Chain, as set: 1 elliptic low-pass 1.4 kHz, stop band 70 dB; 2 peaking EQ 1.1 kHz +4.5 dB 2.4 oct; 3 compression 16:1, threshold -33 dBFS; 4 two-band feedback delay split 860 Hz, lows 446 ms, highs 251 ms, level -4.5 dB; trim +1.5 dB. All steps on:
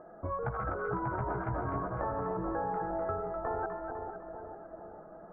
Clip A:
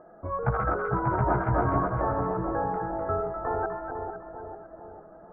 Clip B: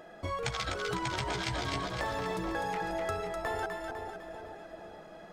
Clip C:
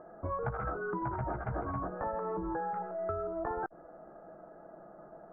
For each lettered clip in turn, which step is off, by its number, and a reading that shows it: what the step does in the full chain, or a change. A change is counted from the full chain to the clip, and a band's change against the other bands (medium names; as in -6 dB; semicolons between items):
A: 3, mean gain reduction 4.0 dB; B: 1, 2 kHz band +7.5 dB; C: 4, echo-to-direct -3.0 dB to none